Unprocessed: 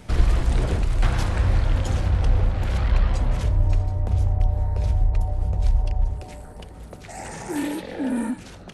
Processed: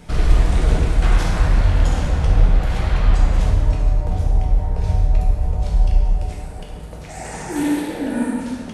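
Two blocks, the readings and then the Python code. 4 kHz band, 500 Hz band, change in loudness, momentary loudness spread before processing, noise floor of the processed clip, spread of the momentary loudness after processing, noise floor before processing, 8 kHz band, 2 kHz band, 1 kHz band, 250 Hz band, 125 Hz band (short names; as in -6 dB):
+4.0 dB, +4.5 dB, +4.0 dB, 13 LU, -33 dBFS, 13 LU, -41 dBFS, +4.5 dB, +5.0 dB, +5.0 dB, +5.5 dB, +3.0 dB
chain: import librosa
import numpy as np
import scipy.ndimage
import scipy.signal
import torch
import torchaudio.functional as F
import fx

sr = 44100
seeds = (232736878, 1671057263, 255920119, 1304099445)

y = fx.rev_plate(x, sr, seeds[0], rt60_s=1.6, hf_ratio=0.8, predelay_ms=0, drr_db=-3.0)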